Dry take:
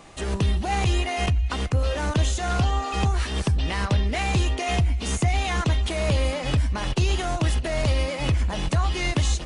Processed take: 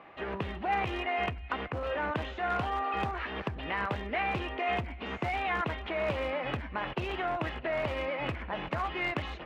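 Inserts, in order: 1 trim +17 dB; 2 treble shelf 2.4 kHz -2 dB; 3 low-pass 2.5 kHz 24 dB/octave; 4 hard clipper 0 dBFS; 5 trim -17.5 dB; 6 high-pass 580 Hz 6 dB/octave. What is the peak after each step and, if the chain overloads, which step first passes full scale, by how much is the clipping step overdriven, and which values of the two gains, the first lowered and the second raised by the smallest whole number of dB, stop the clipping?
+5.5 dBFS, +5.5 dBFS, +5.5 dBFS, 0.0 dBFS, -17.5 dBFS, -16.5 dBFS; step 1, 5.5 dB; step 1 +11 dB, step 5 -11.5 dB

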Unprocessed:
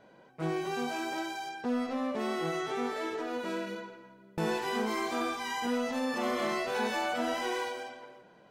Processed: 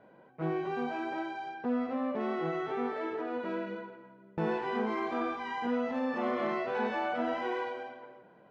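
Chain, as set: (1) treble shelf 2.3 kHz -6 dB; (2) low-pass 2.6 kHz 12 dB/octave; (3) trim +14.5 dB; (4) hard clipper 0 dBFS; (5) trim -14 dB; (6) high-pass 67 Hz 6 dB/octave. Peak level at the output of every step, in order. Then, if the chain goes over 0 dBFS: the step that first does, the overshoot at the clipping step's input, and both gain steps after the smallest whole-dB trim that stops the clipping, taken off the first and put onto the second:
-20.0 dBFS, -20.0 dBFS, -5.5 dBFS, -5.5 dBFS, -19.5 dBFS, -20.0 dBFS; nothing clips

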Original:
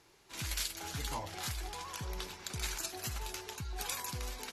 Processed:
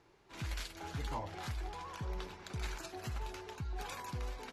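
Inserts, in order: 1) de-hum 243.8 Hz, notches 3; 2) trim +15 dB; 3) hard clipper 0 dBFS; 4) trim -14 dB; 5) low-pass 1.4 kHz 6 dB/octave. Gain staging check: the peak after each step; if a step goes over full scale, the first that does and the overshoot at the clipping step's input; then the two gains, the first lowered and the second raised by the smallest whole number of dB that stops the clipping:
-18.5 dBFS, -3.5 dBFS, -3.5 dBFS, -17.5 dBFS, -26.5 dBFS; nothing clips

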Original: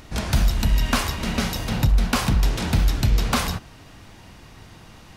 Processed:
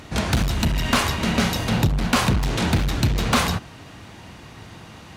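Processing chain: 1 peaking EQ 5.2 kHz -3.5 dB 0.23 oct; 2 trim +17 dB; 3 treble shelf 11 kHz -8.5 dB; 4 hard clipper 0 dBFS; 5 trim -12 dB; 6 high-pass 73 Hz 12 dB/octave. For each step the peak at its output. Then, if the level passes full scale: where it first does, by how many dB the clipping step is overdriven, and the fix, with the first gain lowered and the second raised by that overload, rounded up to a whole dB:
-9.5 dBFS, +7.5 dBFS, +7.5 dBFS, 0.0 dBFS, -12.0 dBFS, -6.5 dBFS; step 2, 7.5 dB; step 2 +9 dB, step 5 -4 dB

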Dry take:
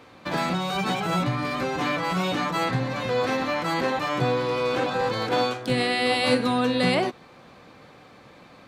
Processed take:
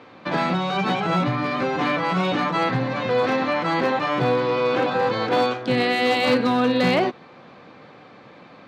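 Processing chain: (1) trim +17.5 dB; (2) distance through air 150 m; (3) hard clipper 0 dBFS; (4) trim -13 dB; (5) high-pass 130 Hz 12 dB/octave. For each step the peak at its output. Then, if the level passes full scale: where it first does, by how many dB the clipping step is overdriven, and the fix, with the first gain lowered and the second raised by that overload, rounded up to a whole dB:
+8.5 dBFS, +8.0 dBFS, 0.0 dBFS, -13.0 dBFS, -8.5 dBFS; step 1, 8.0 dB; step 1 +9.5 dB, step 4 -5 dB

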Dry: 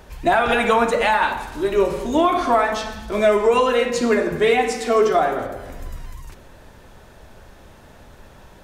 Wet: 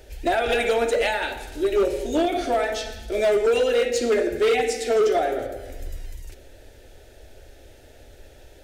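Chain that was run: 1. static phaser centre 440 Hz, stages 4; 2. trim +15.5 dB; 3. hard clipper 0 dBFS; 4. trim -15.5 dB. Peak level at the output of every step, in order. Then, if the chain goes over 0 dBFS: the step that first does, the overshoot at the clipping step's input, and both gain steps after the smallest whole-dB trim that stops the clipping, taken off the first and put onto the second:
-7.5 dBFS, +8.0 dBFS, 0.0 dBFS, -15.5 dBFS; step 2, 8.0 dB; step 2 +7.5 dB, step 4 -7.5 dB

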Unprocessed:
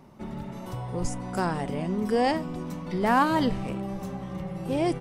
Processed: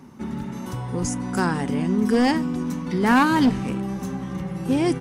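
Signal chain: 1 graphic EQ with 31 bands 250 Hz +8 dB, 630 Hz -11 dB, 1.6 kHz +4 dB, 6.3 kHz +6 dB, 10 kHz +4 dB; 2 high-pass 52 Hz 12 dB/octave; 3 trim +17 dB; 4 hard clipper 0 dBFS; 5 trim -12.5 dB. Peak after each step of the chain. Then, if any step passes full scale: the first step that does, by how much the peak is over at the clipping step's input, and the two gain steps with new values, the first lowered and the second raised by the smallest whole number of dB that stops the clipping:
-9.5 dBFS, -10.0 dBFS, +7.0 dBFS, 0.0 dBFS, -12.5 dBFS; step 3, 7.0 dB; step 3 +10 dB, step 5 -5.5 dB

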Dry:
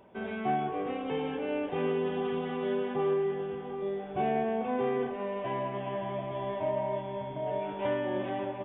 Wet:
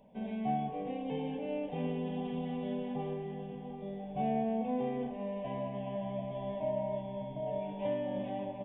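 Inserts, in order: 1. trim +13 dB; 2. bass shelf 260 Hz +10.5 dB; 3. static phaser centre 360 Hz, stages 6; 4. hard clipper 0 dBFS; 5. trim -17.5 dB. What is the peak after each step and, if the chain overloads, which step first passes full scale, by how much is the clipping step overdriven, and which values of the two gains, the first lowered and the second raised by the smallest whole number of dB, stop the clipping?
-7.0 dBFS, -3.0 dBFS, -3.5 dBFS, -3.5 dBFS, -21.0 dBFS; nothing clips

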